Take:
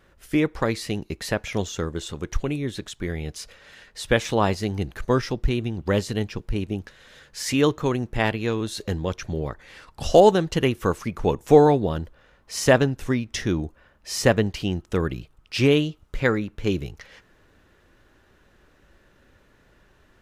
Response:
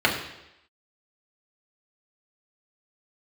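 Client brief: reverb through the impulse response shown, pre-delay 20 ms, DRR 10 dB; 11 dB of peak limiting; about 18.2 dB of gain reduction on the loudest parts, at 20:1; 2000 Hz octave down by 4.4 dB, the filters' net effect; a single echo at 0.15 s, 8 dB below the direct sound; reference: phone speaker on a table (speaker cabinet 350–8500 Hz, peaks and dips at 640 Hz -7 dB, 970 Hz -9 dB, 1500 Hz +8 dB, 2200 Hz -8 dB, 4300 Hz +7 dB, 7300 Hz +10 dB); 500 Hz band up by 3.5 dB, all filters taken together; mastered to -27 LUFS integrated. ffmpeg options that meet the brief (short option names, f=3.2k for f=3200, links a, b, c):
-filter_complex "[0:a]equalizer=f=500:t=o:g=7,equalizer=f=2k:t=o:g=-9,acompressor=threshold=-21dB:ratio=20,alimiter=limit=-20.5dB:level=0:latency=1,aecho=1:1:150:0.398,asplit=2[a][b];[1:a]atrim=start_sample=2205,adelay=20[c];[b][c]afir=irnorm=-1:irlink=0,volume=-28dB[d];[a][d]amix=inputs=2:normalize=0,highpass=f=350:w=0.5412,highpass=f=350:w=1.3066,equalizer=f=640:t=q:w=4:g=-7,equalizer=f=970:t=q:w=4:g=-9,equalizer=f=1.5k:t=q:w=4:g=8,equalizer=f=2.2k:t=q:w=4:g=-8,equalizer=f=4.3k:t=q:w=4:g=7,equalizer=f=7.3k:t=q:w=4:g=10,lowpass=f=8.5k:w=0.5412,lowpass=f=8.5k:w=1.3066,volume=6dB"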